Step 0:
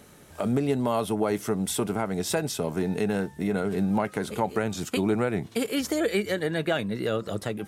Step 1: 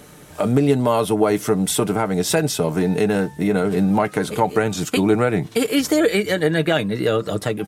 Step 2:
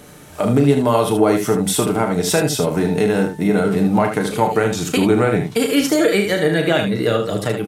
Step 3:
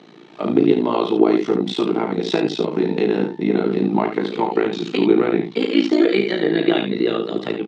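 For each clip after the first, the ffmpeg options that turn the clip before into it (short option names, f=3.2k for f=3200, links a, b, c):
-af "aecho=1:1:6.6:0.35,volume=7.5dB"
-af "aecho=1:1:34.99|75.8:0.398|0.447,volume=1dB"
-af "tremolo=f=56:d=0.919,highpass=f=180:w=0.5412,highpass=f=180:w=1.3066,equalizer=f=350:t=q:w=4:g=9,equalizer=f=560:t=q:w=4:g=-8,equalizer=f=1.5k:t=q:w=4:g=-6,equalizer=f=3.9k:t=q:w=4:g=4,lowpass=f=4.2k:w=0.5412,lowpass=f=4.2k:w=1.3066,volume=1dB"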